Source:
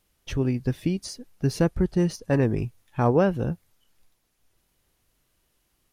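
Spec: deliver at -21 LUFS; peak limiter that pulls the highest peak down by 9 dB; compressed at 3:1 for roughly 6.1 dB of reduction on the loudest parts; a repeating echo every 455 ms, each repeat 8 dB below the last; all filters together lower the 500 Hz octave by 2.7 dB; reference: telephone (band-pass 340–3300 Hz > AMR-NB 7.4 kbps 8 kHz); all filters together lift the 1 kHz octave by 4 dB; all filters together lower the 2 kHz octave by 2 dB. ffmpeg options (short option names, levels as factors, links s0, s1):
-af "equalizer=f=500:t=o:g=-3.5,equalizer=f=1000:t=o:g=8,equalizer=f=2000:t=o:g=-5.5,acompressor=threshold=0.0631:ratio=3,alimiter=limit=0.0841:level=0:latency=1,highpass=340,lowpass=3300,aecho=1:1:455|910|1365|1820|2275:0.398|0.159|0.0637|0.0255|0.0102,volume=8.91" -ar 8000 -c:a libopencore_amrnb -b:a 7400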